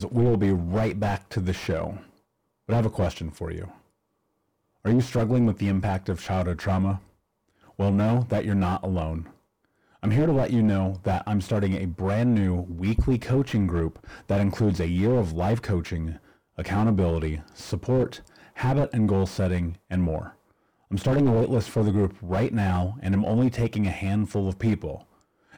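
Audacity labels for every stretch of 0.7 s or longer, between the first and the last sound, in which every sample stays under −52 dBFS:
3.810000	4.840000	silence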